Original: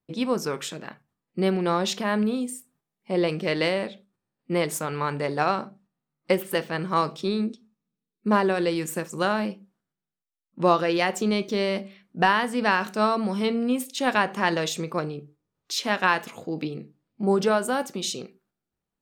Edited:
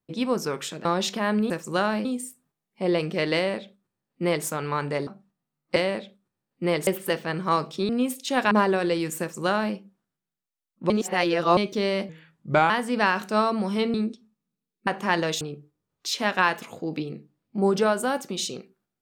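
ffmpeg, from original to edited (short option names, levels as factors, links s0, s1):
-filter_complex "[0:a]asplit=16[s0][s1][s2][s3][s4][s5][s6][s7][s8][s9][s10][s11][s12][s13][s14][s15];[s0]atrim=end=0.852[s16];[s1]atrim=start=1.688:end=2.342[s17];[s2]atrim=start=8.958:end=9.512[s18];[s3]atrim=start=2.338:end=5.362[s19];[s4]atrim=start=5.628:end=6.322[s20];[s5]atrim=start=3.638:end=4.752[s21];[s6]atrim=start=6.318:end=7.342[s22];[s7]atrim=start=13.588:end=14.212[s23];[s8]atrim=start=8.268:end=10.662[s24];[s9]atrim=start=10.658:end=11.332,asetpts=PTS-STARTPTS,areverse[s25];[s10]atrim=start=11.328:end=11.854[s26];[s11]atrim=start=11.85:end=12.35,asetpts=PTS-STARTPTS,asetrate=36162,aresample=44100,atrim=end_sample=26890,asetpts=PTS-STARTPTS[s27];[s12]atrim=start=12.346:end=13.592[s28];[s13]atrim=start=7.338:end=8.272[s29];[s14]atrim=start=14.208:end=14.752[s30];[s15]atrim=start=15.058[s31];[s16][s17]acrossfade=d=0.004:c1=hsin:c2=hsin[s32];[s32][s18]acrossfade=d=0.004:c1=hsin:c2=hsin[s33];[s33][s19]acrossfade=d=0.004:c1=hsin:c2=hsin[s34];[s34][s20]acrossfade=d=0.004:c1=hsin:c2=hsin[s35];[s35][s21]acrossfade=d=0.004:c1=hsin:c2=hsin[s36];[s36][s22]acrossfade=d=0.004:c1=hsin:c2=hsin[s37];[s37][s23]acrossfade=d=0.004:c1=hsin:c2=hsin[s38];[s38][s24]acrossfade=d=0.004:c1=hsin:c2=hsin[s39];[s39][s25]acrossfade=d=0.004:c1=hsin:c2=hsin[s40];[s40][s26]acrossfade=d=0.004:c1=hsin:c2=hsin[s41];[s41][s27]acrossfade=d=0.004:c1=hsin:c2=hsin[s42];[s42][s28]acrossfade=d=0.004:c1=hsin:c2=hsin[s43];[s43][s29]acrossfade=d=0.004:c1=hsin:c2=hsin[s44];[s44][s30]acrossfade=d=0.004:c1=hsin:c2=hsin[s45];[s45][s31]acrossfade=d=0.004:c1=hsin:c2=hsin"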